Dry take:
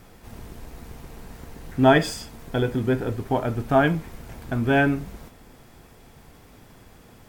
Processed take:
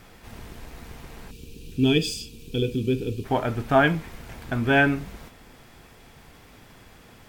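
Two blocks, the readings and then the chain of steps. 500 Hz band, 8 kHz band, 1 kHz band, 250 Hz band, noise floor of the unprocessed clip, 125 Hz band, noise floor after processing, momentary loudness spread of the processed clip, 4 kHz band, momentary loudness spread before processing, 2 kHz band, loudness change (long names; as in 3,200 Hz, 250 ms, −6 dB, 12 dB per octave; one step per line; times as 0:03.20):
−2.5 dB, +0.5 dB, −2.0 dB, −1.5 dB, −51 dBFS, −1.5 dB, −51 dBFS, 23 LU, +3.5 dB, 23 LU, +1.5 dB, −1.0 dB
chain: gain on a spectral selection 0:01.31–0:03.24, 510–2,300 Hz −22 dB
parametric band 2,600 Hz +6 dB 2.4 octaves
level −1.5 dB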